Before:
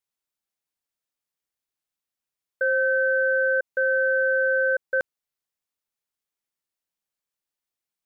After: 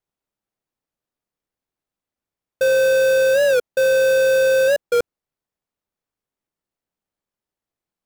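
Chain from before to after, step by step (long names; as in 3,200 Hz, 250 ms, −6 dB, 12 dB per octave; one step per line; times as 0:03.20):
each half-wave held at its own peak
tilt shelving filter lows +6.5 dB, about 1,200 Hz
wow of a warped record 45 rpm, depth 160 cents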